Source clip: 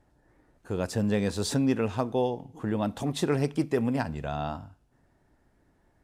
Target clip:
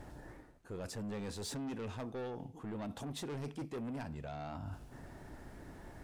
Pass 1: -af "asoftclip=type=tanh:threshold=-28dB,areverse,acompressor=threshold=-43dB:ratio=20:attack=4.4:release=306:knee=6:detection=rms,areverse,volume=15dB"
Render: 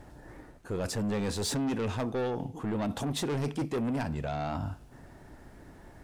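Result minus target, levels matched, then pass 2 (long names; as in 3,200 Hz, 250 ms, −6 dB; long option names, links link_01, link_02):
downward compressor: peak gain reduction −10.5 dB
-af "asoftclip=type=tanh:threshold=-28dB,areverse,acompressor=threshold=-54dB:ratio=20:attack=4.4:release=306:knee=6:detection=rms,areverse,volume=15dB"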